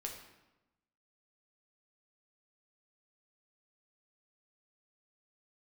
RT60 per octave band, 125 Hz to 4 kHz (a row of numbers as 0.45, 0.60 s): 1.2, 1.2, 1.0, 1.0, 0.90, 0.75 s